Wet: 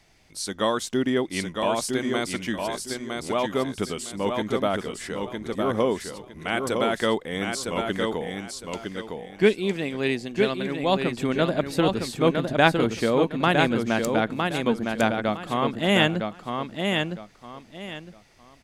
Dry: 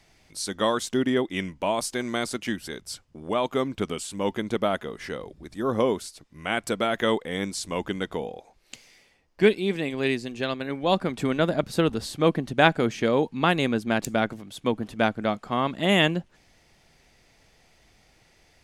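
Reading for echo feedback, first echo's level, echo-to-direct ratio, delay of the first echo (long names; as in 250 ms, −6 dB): 25%, −4.5 dB, −4.0 dB, 959 ms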